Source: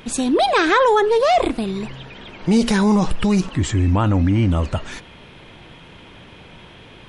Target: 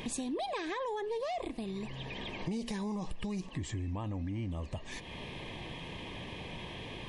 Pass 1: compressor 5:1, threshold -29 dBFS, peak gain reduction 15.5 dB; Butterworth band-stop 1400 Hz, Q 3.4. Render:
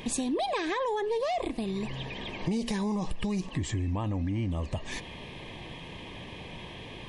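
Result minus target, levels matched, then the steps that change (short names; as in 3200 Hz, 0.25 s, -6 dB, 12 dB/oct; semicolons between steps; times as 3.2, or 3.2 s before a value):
compressor: peak gain reduction -6.5 dB
change: compressor 5:1, threshold -37 dBFS, peak gain reduction 22 dB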